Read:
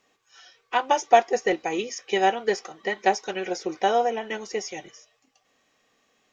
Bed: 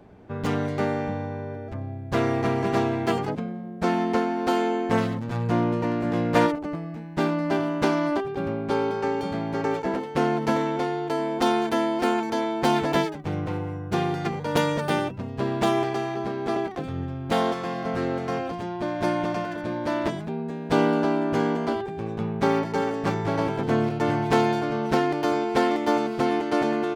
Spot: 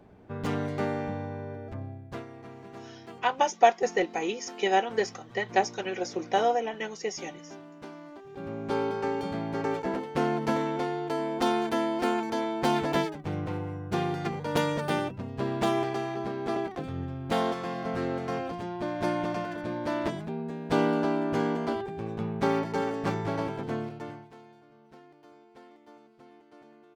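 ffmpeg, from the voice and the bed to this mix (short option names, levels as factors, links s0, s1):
-filter_complex "[0:a]adelay=2500,volume=0.708[s0];[1:a]volume=4.47,afade=t=out:st=1.81:d=0.44:silence=0.141254,afade=t=in:st=8.2:d=0.57:silence=0.133352,afade=t=out:st=23.15:d=1.16:silence=0.0446684[s1];[s0][s1]amix=inputs=2:normalize=0"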